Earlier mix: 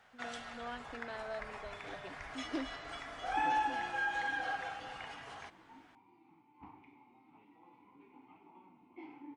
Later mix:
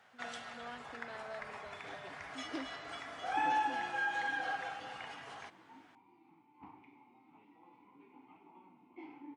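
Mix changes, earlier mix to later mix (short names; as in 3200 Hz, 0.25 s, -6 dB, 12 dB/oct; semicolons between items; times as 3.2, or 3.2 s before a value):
speech -4.0 dB; master: add HPF 110 Hz 12 dB/oct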